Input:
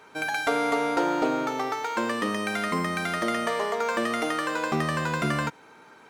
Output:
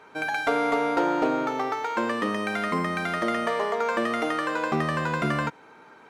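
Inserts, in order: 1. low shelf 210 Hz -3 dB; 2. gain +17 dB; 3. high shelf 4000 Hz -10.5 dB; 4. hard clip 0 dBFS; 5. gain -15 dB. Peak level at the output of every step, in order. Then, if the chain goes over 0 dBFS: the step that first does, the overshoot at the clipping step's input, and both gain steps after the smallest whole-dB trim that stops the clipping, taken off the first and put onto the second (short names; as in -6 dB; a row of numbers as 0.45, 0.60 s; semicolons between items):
-12.0, +5.0, +4.0, 0.0, -15.0 dBFS; step 2, 4.0 dB; step 2 +13 dB, step 5 -11 dB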